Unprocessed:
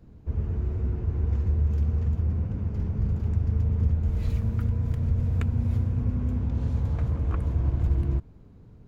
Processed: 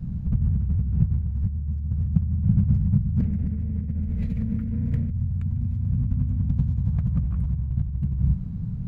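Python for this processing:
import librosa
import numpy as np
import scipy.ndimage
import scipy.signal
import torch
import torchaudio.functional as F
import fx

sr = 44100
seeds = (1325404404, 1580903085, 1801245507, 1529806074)

p1 = fx.graphic_eq(x, sr, hz=(125, 250, 500, 1000, 2000), db=(-7, 11, 11, -4, 12), at=(3.19, 5.1), fade=0.02)
p2 = p1 + fx.echo_single(p1, sr, ms=149, db=-15.5, dry=0)
p3 = fx.over_compress(p2, sr, threshold_db=-34.0, ratio=-1.0)
p4 = fx.low_shelf_res(p3, sr, hz=250.0, db=12.5, q=3.0)
y = p4 * 10.0 ** (-4.0 / 20.0)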